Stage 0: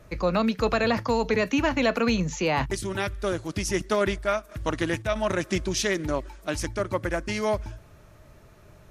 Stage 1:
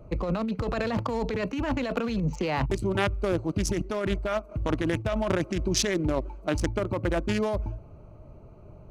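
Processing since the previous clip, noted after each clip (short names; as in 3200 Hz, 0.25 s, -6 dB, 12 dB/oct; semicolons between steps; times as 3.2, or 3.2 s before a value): Wiener smoothing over 25 samples; negative-ratio compressor -28 dBFS, ratio -1; gain +2 dB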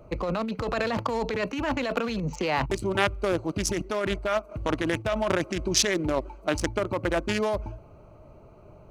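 low shelf 310 Hz -9 dB; gain +4 dB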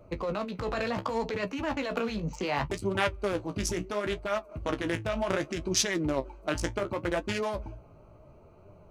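flange 0.69 Hz, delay 9.8 ms, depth 9.3 ms, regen +36%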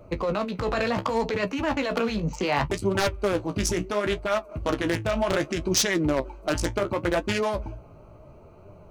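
wavefolder -19.5 dBFS; gain +5.5 dB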